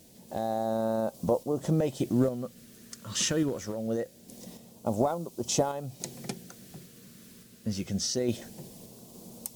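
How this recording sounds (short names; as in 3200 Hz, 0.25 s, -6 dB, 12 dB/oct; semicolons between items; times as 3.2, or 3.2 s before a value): a quantiser's noise floor 10-bit, dither triangular; phasing stages 2, 0.24 Hz, lowest notch 780–1600 Hz; random-step tremolo; MP3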